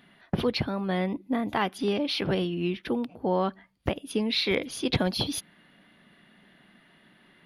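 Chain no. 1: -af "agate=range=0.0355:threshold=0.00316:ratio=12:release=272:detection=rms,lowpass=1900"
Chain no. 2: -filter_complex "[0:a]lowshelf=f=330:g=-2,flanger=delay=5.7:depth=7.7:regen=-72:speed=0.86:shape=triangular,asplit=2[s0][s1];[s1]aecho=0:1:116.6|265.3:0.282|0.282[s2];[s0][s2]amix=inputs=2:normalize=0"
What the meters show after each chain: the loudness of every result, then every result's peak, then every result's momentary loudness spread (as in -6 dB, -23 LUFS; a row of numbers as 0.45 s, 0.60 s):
-29.5 LUFS, -33.0 LUFS; -12.0 dBFS, -17.5 dBFS; 6 LU, 7 LU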